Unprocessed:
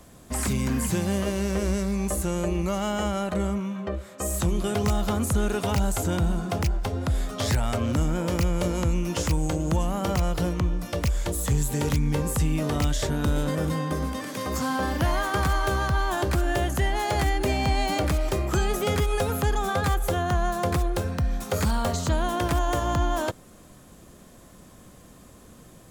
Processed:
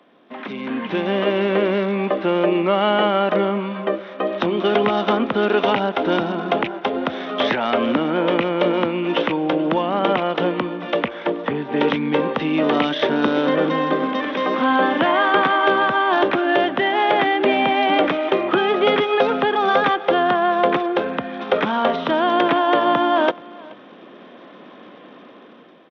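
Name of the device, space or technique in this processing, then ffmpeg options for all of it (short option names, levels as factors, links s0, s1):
Bluetooth headset: -filter_complex "[0:a]asettb=1/sr,asplit=3[s0][s1][s2];[s0]atrim=end=11.054[s3];[s1]atrim=start=11.05:end=11.76,asetpts=PTS-STARTPTS,afade=t=in:d=0.004:c=qsin,afade=t=out:st=0.706:d=0.004:c=qsin,acrossover=split=2600[s4][s5];[s5]acompressor=threshold=0.00447:ratio=4:attack=1:release=60[s6];[s4][s6]amix=inputs=2:normalize=0[s7];[s2]atrim=start=11.756[s8];[s3][s7]acrossfade=d=0.004:c1=hsin:c2=qsin[s9];[s9][s8]acrossfade=d=0.004:c1=qsin:c2=hsin,highpass=f=250:w=0.5412,highpass=f=250:w=1.3066,aecho=1:1:428:0.0708,dynaudnorm=f=110:g=17:m=3.98,aresample=8000,aresample=44100" -ar 32000 -c:a sbc -b:a 64k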